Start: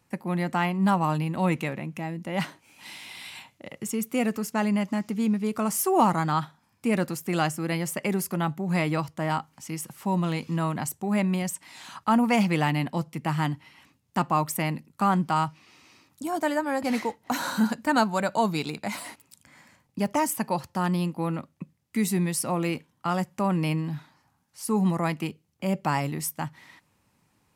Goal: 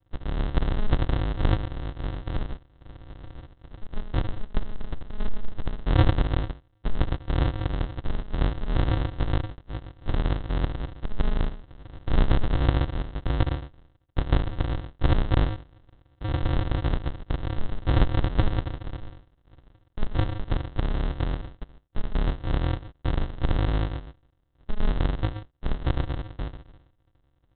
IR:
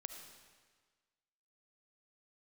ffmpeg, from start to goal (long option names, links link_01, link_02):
-filter_complex "[1:a]atrim=start_sample=2205,atrim=end_sample=6615[link_01];[0:a][link_01]afir=irnorm=-1:irlink=0,aresample=8000,acrusher=samples=38:mix=1:aa=0.000001,aresample=44100,equalizer=frequency=2400:width=6.2:gain=-9.5,volume=7dB"